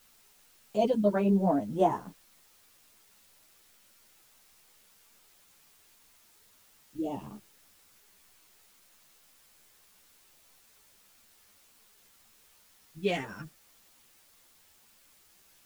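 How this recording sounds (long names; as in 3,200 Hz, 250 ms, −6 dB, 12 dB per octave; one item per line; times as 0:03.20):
phaser sweep stages 2, 0.15 Hz, lowest notch 400–2,400 Hz
a quantiser's noise floor 10 bits, dither triangular
a shimmering, thickened sound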